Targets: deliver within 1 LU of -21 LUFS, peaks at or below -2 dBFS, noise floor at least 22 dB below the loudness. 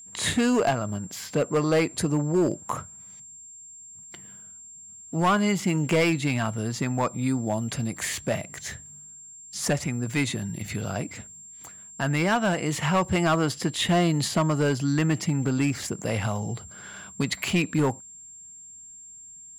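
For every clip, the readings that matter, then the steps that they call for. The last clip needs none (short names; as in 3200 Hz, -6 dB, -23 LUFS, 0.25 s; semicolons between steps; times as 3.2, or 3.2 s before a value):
clipped 1.1%; flat tops at -16.5 dBFS; steady tone 7400 Hz; tone level -43 dBFS; loudness -26.0 LUFS; peak -16.5 dBFS; loudness target -21.0 LUFS
-> clip repair -16.5 dBFS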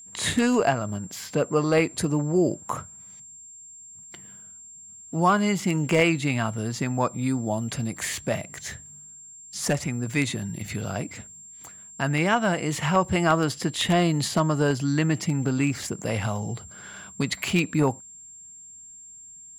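clipped 0.0%; steady tone 7400 Hz; tone level -43 dBFS
-> notch 7400 Hz, Q 30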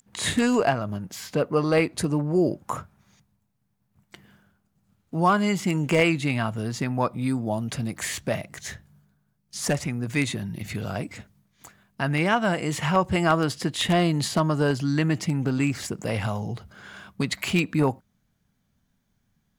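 steady tone none; loudness -25.0 LUFS; peak -7.5 dBFS; loudness target -21.0 LUFS
-> gain +4 dB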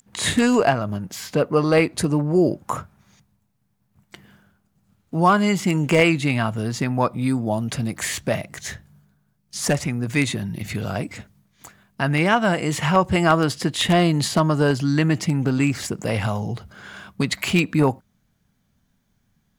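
loudness -21.0 LUFS; peak -3.5 dBFS; noise floor -68 dBFS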